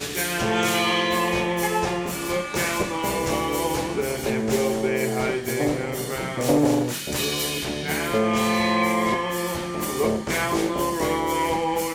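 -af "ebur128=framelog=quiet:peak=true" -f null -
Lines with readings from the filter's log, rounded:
Integrated loudness:
  I:         -23.5 LUFS
  Threshold: -33.5 LUFS
Loudness range:
  LRA:         1.9 LU
  Threshold: -43.6 LUFS
  LRA low:   -24.5 LUFS
  LRA high:  -22.6 LUFS
True peak:
  Peak:       -7.4 dBFS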